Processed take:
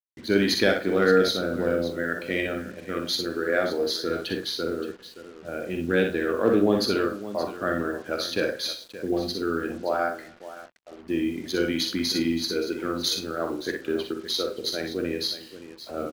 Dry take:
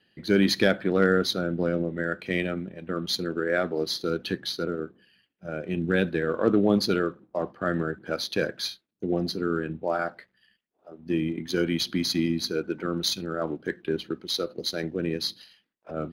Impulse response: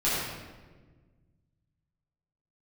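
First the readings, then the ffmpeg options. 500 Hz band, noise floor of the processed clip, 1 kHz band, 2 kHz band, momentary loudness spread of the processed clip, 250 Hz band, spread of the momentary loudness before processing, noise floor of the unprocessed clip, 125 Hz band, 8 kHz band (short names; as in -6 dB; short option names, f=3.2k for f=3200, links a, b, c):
+2.0 dB, -47 dBFS, +2.0 dB, +2.0 dB, 13 LU, 0.0 dB, 11 LU, -75 dBFS, -4.5 dB, +2.0 dB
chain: -filter_complex "[0:a]asplit=2[a][b];[b]adelay=43,volume=-12.5dB[c];[a][c]amix=inputs=2:normalize=0,aecho=1:1:47|60|82|573:0.299|0.501|0.106|0.2,asplit=2[d][e];[1:a]atrim=start_sample=2205,lowshelf=f=210:g=-7.5[f];[e][f]afir=irnorm=-1:irlink=0,volume=-31dB[g];[d][g]amix=inputs=2:normalize=0,acrusher=bits=7:mix=0:aa=0.5,equalizer=f=160:t=o:w=0.36:g=-12.5"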